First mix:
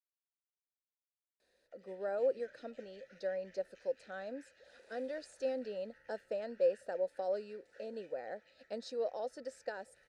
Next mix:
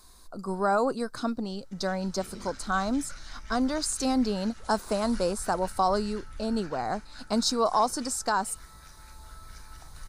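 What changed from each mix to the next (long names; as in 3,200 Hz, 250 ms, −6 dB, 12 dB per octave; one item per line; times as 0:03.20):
speech: entry −1.40 s
master: remove formant filter e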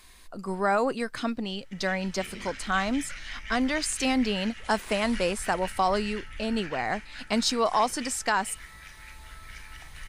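master: add flat-topped bell 2,400 Hz +14.5 dB 1.1 octaves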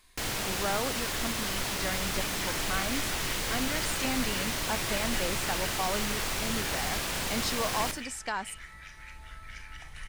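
speech −8.0 dB
first sound: unmuted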